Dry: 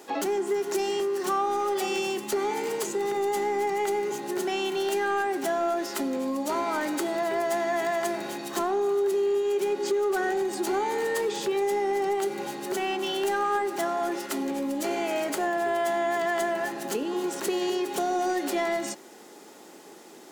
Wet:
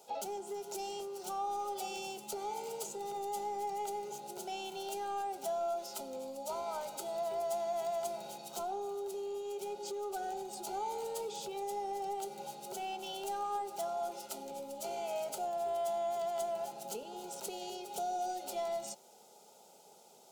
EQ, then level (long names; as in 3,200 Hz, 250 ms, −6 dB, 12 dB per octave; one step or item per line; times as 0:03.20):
Butterworth band-reject 1,100 Hz, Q 5.3
phaser with its sweep stopped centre 740 Hz, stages 4
−7.5 dB